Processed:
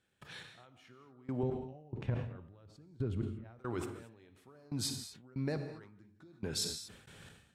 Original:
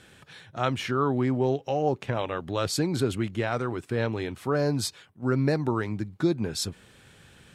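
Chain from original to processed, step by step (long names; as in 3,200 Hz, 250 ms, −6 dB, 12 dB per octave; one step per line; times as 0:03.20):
0:01.43–0:03.59: RIAA equalisation playback
downward compressor 12 to 1, threshold −30 dBFS, peak gain reduction 17 dB
gate pattern ".x....x." 70 BPM −24 dB
reverb whose tail is shaped and stops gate 250 ms flat, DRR 9 dB
level that may fall only so fast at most 66 dB per second
level −1.5 dB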